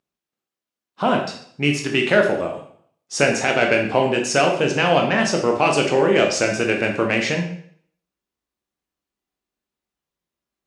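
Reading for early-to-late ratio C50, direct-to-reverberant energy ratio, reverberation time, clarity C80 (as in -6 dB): 6.0 dB, 1.5 dB, 0.60 s, 10.0 dB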